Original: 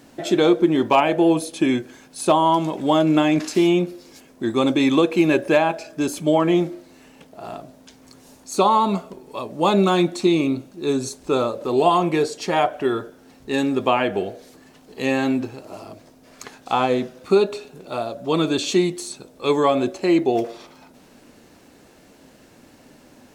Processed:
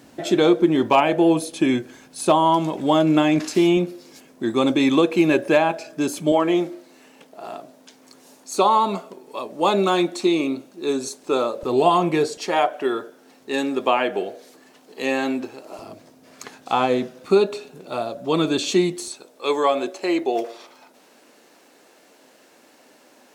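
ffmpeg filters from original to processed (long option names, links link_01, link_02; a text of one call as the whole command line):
ffmpeg -i in.wav -af "asetnsamples=nb_out_samples=441:pad=0,asendcmd='3.77 highpass f 120;6.32 highpass f 270;11.63 highpass f 92;12.37 highpass f 290;15.79 highpass f 120;19.08 highpass f 400',highpass=53" out.wav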